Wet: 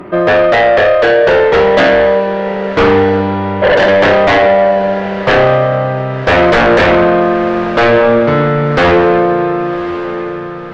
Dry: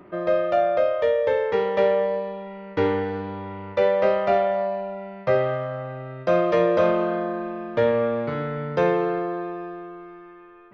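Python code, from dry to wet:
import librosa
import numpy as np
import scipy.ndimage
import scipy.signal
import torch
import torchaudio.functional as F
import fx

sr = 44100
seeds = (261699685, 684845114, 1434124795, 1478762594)

p1 = fx.spec_repair(x, sr, seeds[0], start_s=3.65, length_s=0.21, low_hz=290.0, high_hz=2500.0, source='after')
p2 = fx.fold_sine(p1, sr, drive_db=19, ceiling_db=0.0)
p3 = p2 + fx.echo_diffused(p2, sr, ms=1119, feedback_pct=45, wet_db=-13.5, dry=0)
y = p3 * 10.0 ** (-5.0 / 20.0)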